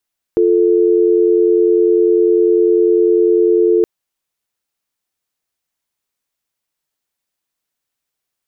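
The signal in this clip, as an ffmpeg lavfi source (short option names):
-f lavfi -i "aevalsrc='0.266*(sin(2*PI*350*t)+sin(2*PI*440*t))':d=3.47:s=44100"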